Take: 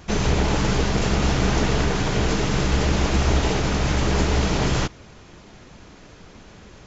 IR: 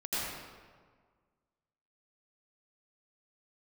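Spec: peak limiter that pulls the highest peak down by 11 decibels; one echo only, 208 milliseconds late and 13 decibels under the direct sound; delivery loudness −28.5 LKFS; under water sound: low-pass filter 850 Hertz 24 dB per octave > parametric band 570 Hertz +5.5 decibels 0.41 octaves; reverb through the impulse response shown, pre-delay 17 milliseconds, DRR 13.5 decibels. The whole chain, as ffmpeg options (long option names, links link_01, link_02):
-filter_complex "[0:a]alimiter=limit=-18dB:level=0:latency=1,aecho=1:1:208:0.224,asplit=2[link_01][link_02];[1:a]atrim=start_sample=2205,adelay=17[link_03];[link_02][link_03]afir=irnorm=-1:irlink=0,volume=-20dB[link_04];[link_01][link_04]amix=inputs=2:normalize=0,lowpass=frequency=850:width=0.5412,lowpass=frequency=850:width=1.3066,equalizer=frequency=570:width_type=o:width=0.41:gain=5.5"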